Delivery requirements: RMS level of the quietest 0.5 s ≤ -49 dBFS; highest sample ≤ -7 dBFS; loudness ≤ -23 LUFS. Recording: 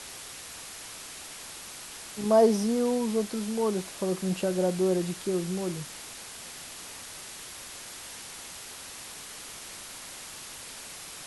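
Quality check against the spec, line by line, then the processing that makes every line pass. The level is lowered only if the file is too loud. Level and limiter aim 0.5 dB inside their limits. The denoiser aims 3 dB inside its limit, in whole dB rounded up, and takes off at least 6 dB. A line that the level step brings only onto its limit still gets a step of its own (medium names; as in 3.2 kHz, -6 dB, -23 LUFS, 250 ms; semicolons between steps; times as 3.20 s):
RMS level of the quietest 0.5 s -43 dBFS: fail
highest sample -11.0 dBFS: pass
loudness -31.5 LUFS: pass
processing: noise reduction 9 dB, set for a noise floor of -43 dBFS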